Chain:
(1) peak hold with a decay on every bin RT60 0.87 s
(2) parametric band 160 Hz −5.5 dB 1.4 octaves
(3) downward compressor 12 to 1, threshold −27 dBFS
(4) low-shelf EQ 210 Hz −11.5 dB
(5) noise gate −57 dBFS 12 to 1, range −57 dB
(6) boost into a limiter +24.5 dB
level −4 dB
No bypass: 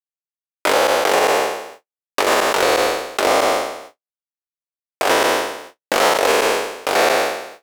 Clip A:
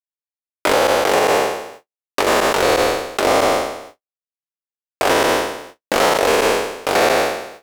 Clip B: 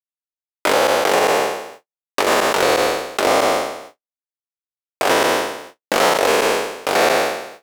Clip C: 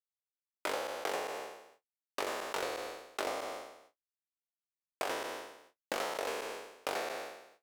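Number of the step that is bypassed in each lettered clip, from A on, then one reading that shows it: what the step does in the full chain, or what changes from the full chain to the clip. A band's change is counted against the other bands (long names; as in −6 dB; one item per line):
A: 4, 125 Hz band +7.5 dB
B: 2, 125 Hz band +4.0 dB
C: 6, change in crest factor +9.0 dB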